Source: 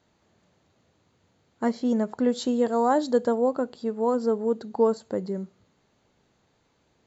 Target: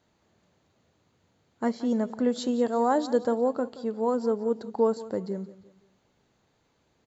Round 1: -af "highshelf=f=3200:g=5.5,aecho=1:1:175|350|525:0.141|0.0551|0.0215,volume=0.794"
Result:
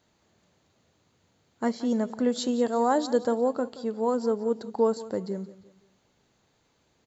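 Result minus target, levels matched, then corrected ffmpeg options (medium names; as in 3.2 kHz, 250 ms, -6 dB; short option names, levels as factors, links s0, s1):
8 kHz band +4.5 dB
-af "aecho=1:1:175|350|525:0.141|0.0551|0.0215,volume=0.794"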